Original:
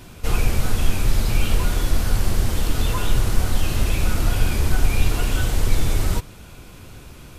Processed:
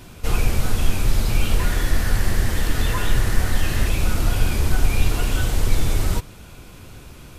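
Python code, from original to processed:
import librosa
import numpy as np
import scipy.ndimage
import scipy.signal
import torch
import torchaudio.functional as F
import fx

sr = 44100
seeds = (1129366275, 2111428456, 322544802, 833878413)

y = fx.peak_eq(x, sr, hz=1800.0, db=11.5, octaves=0.3, at=(1.59, 3.88))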